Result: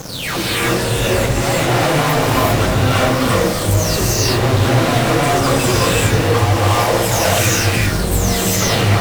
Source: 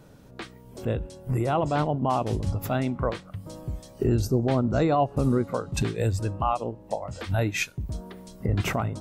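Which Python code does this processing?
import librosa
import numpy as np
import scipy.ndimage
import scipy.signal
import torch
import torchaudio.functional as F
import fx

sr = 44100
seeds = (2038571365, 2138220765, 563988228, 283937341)

y = fx.spec_delay(x, sr, highs='early', ms=534)
y = fx.fuzz(y, sr, gain_db=53.0, gate_db=-51.0)
y = fx.rev_gated(y, sr, seeds[0], gate_ms=420, shape='rising', drr_db=-6.0)
y = y * librosa.db_to_amplitude(-7.0)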